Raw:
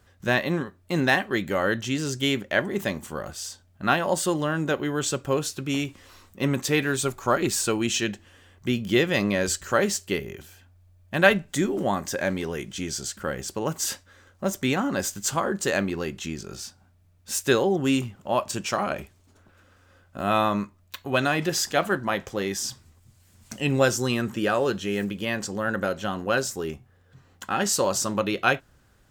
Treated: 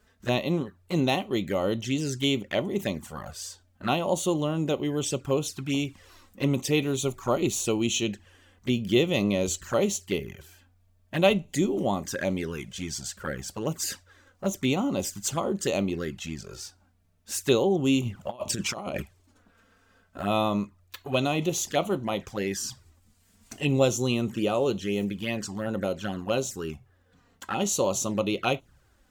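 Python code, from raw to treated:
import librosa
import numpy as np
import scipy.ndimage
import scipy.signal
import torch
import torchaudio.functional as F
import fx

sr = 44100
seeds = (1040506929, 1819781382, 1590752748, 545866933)

y = fx.env_flanger(x, sr, rest_ms=4.8, full_db=-22.5)
y = fx.over_compress(y, sr, threshold_db=-33.0, ratio=-0.5, at=(18.01, 19.01), fade=0.02)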